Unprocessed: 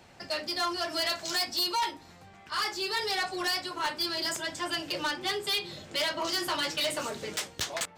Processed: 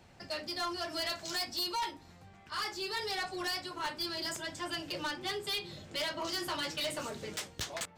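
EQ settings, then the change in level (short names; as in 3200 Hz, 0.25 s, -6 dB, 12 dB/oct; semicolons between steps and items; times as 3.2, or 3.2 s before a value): low shelf 190 Hz +8 dB; -6.0 dB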